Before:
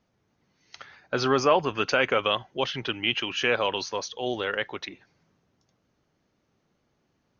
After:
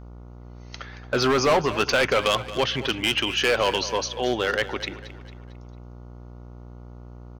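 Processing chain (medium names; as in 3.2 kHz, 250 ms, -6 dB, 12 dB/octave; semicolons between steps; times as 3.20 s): hard clipper -21 dBFS, distortion -8 dB; mains buzz 60 Hz, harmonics 24, -47 dBFS -7 dB/octave; on a send: feedback delay 225 ms, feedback 45%, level -15 dB; on the sum: trim +5.5 dB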